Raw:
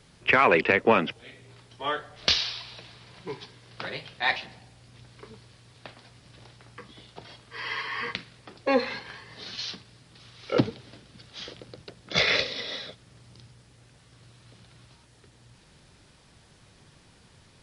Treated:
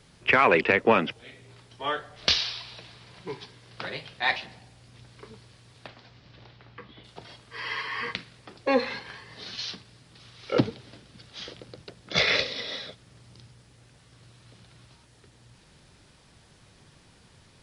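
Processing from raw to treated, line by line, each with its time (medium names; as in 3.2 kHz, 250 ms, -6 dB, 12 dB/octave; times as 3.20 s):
5.87–7.03 s: low-pass 6.1 kHz -> 3.7 kHz 24 dB/octave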